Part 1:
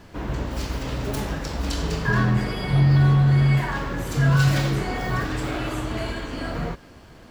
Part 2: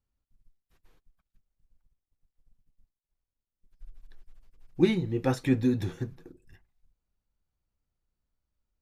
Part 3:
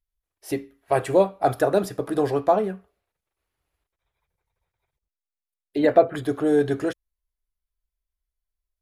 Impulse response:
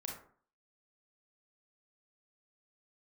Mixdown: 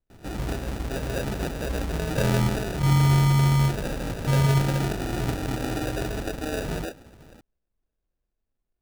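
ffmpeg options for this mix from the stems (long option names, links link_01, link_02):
-filter_complex "[0:a]adelay=100,volume=-2.5dB[link_01];[1:a]acompressor=threshold=-28dB:ratio=6,volume=-4dB[link_02];[2:a]acompressor=threshold=-24dB:ratio=6,alimiter=limit=-23.5dB:level=0:latency=1:release=147,equalizer=frequency=150:width=0.77:gain=-12.5,volume=2dB[link_03];[link_01][link_02][link_03]amix=inputs=3:normalize=0,acrusher=samples=41:mix=1:aa=0.000001"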